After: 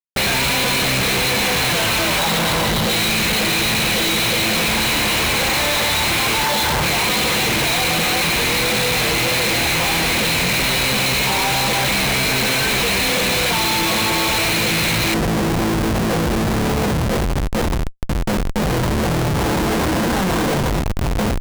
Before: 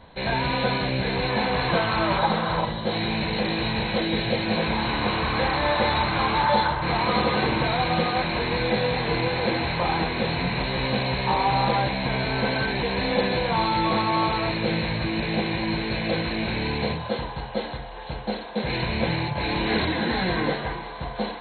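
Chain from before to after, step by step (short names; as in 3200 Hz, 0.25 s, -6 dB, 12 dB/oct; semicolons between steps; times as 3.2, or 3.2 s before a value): resonant high shelf 1800 Hz +9.5 dB, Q 1.5, from 15.14 s -6 dB; Schmitt trigger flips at -29 dBFS; gain +3.5 dB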